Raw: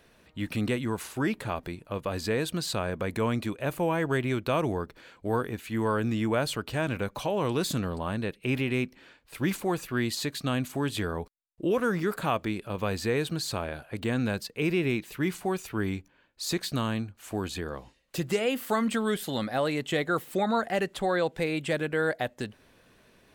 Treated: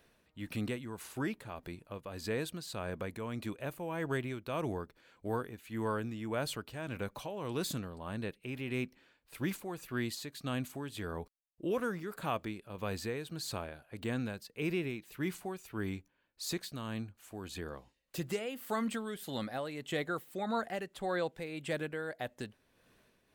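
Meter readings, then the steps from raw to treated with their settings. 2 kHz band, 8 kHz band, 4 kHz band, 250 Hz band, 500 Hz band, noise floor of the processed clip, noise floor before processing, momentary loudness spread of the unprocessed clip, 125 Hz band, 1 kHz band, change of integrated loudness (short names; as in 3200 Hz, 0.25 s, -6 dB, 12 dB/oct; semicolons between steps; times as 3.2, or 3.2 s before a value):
-9.0 dB, -7.5 dB, -9.0 dB, -9.0 dB, -9.0 dB, -74 dBFS, -63 dBFS, 8 LU, -9.0 dB, -9.0 dB, -9.0 dB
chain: tremolo 1.7 Hz, depth 52%; high shelf 12000 Hz +5.5 dB; gain -7 dB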